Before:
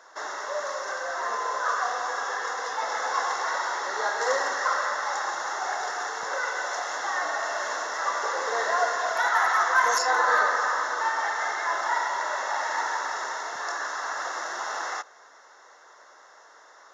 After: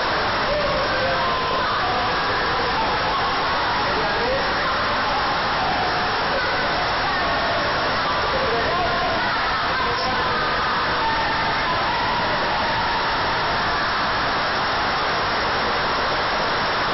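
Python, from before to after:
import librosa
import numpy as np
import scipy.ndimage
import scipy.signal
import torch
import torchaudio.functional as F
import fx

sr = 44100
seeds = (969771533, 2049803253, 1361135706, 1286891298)

y = np.sign(x) * np.sqrt(np.mean(np.square(x)))
y = fx.brickwall_lowpass(y, sr, high_hz=5600.0)
y = fx.low_shelf(y, sr, hz=410.0, db=7.5)
y = fx.doubler(y, sr, ms=19.0, db=-11)
y = F.gain(torch.from_numpy(y), 6.0).numpy()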